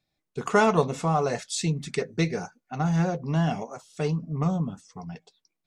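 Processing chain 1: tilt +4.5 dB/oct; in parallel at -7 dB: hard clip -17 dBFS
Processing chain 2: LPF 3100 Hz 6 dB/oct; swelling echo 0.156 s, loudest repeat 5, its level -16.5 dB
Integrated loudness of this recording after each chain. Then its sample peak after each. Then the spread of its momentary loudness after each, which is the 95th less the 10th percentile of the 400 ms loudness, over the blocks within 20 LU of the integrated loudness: -23.5, -26.5 LUFS; -4.5, -7.5 dBFS; 20, 11 LU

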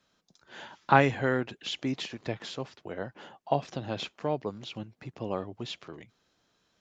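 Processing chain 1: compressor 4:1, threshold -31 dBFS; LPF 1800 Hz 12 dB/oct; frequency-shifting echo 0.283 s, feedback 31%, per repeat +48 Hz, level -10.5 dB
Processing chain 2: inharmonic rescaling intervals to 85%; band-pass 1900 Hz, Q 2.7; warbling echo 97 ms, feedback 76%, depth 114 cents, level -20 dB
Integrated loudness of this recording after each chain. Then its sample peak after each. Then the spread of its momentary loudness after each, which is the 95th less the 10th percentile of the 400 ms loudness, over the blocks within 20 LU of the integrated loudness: -39.5, -44.0 LUFS; -15.5, -23.0 dBFS; 12, 20 LU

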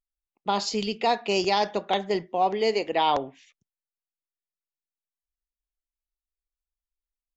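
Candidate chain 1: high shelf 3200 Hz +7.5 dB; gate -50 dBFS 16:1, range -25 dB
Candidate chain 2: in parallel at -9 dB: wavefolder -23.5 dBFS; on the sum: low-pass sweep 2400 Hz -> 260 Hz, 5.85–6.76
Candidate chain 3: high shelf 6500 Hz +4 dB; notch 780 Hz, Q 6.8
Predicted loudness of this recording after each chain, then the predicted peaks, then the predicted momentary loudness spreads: -24.0, -23.5, -26.5 LUFS; -8.5, -9.5, -11.0 dBFS; 6, 6, 6 LU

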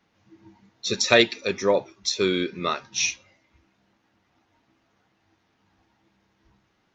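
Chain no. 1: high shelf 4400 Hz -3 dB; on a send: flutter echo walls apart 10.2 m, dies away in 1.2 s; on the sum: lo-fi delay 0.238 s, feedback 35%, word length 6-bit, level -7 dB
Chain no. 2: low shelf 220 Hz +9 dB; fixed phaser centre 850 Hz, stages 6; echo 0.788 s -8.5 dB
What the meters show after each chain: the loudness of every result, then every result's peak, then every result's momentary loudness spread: -19.5, -25.5 LUFS; -1.0, -5.5 dBFS; 14, 18 LU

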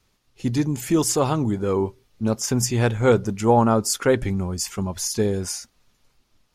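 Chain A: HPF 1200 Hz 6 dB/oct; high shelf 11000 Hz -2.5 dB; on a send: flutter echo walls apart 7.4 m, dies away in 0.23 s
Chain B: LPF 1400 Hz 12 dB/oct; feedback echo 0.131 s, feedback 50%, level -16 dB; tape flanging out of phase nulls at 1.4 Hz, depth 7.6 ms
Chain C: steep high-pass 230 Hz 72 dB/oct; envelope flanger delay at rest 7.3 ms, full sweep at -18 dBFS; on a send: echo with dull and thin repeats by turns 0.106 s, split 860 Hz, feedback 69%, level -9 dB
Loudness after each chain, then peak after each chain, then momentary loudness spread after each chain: -28.0, -26.0, -24.5 LUFS; -10.0, -8.5, -6.0 dBFS; 13, 10, 12 LU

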